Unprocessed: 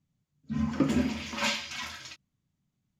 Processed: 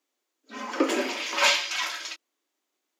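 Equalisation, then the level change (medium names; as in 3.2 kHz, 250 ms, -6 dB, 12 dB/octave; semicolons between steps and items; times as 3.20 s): steep high-pass 320 Hz 48 dB/octave; +8.5 dB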